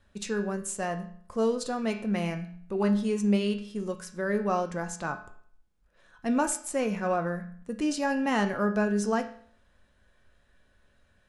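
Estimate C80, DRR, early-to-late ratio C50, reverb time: 14.0 dB, 4.5 dB, 11.0 dB, 0.55 s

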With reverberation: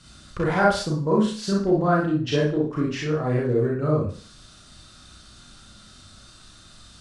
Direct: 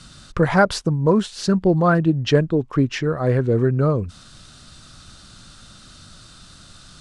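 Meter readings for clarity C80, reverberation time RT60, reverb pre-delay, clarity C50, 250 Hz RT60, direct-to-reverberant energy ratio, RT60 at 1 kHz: 9.0 dB, 0.40 s, 33 ms, 1.0 dB, 0.45 s, −4.5 dB, 0.40 s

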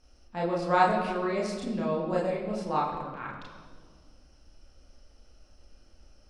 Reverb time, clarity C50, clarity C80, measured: 1.8 s, 4.5 dB, 5.5 dB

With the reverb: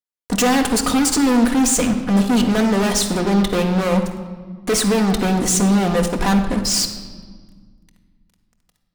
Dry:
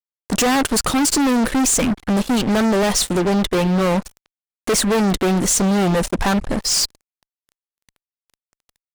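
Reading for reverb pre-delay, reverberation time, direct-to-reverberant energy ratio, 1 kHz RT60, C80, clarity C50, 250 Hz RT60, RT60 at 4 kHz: 4 ms, 1.6 s, 3.5 dB, 1.5 s, 10.0 dB, 7.5 dB, 2.5 s, 1.2 s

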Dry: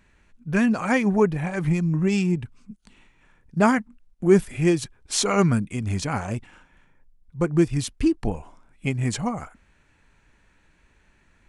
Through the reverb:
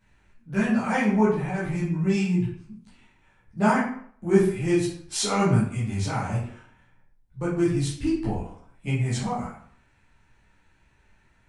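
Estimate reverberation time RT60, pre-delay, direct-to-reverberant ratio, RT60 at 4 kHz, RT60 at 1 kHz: 0.60 s, 9 ms, −9.5 dB, 0.40 s, 0.60 s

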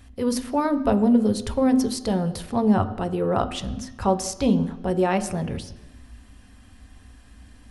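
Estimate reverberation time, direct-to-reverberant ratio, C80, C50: 1.0 s, 8.0 dB, 15.5 dB, 14.5 dB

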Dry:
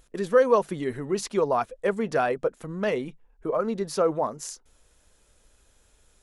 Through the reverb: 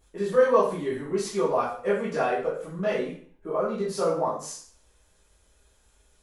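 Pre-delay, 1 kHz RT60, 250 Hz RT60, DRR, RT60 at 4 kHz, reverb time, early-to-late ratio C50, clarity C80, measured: 6 ms, 0.50 s, 0.50 s, −10.0 dB, 0.45 s, 0.50 s, 4.0 dB, 8.5 dB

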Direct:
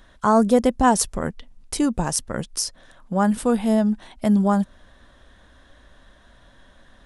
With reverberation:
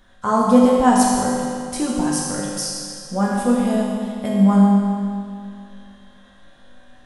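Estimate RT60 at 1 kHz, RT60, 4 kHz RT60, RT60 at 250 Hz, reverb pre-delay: 2.3 s, 2.3 s, 2.1 s, 2.3 s, 4 ms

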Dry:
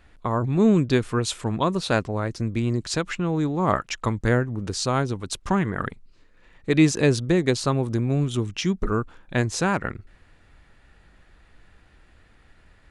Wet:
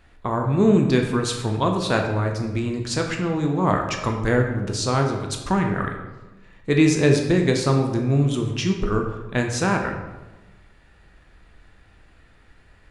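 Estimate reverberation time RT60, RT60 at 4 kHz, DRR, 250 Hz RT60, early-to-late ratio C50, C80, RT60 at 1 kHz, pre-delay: 1.1 s, 0.75 s, 2.0 dB, 1.3 s, 5.5 dB, 7.5 dB, 1.1 s, 11 ms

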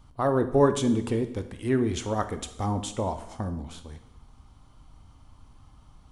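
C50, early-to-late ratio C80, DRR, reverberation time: 11.5 dB, 14.5 dB, 9.0 dB, 0.85 s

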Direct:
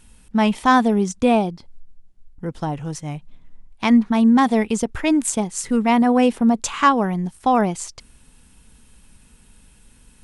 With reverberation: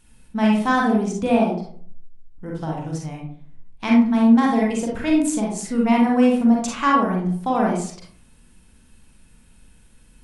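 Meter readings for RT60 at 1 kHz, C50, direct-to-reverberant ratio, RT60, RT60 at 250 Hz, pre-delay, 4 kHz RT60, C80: 0.50 s, 1.5 dB, −2.5 dB, 0.55 s, 0.65 s, 36 ms, 0.30 s, 7.5 dB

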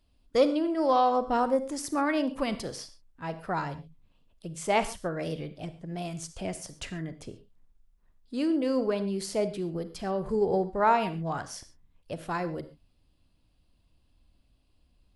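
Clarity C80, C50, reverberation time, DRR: 16.0 dB, 13.0 dB, non-exponential decay, 11.5 dB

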